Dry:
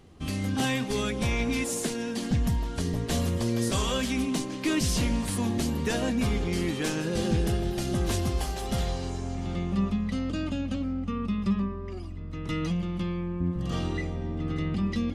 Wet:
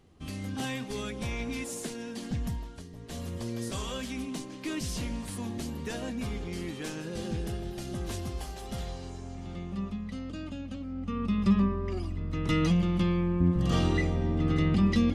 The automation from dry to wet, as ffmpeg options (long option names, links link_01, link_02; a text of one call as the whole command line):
ffmpeg -i in.wav -af "volume=16dB,afade=type=out:start_time=2.5:duration=0.39:silence=0.251189,afade=type=in:start_time=2.89:duration=0.52:silence=0.281838,afade=type=in:start_time=10.87:duration=0.78:silence=0.251189" out.wav